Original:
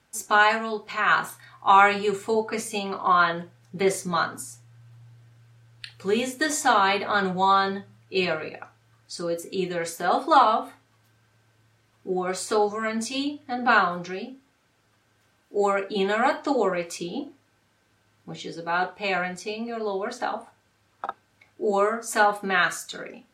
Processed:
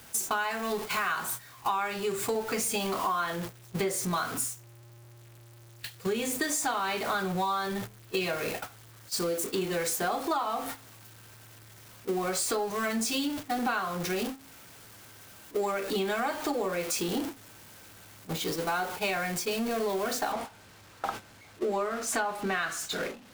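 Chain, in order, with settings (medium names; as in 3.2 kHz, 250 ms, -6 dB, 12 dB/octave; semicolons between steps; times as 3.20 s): jump at every zero crossing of -30.5 dBFS; gate -32 dBFS, range -17 dB; treble shelf 8.7 kHz +9.5 dB, from 20.32 s -4 dB; compression 8:1, threshold -27 dBFS, peak gain reduction 16 dB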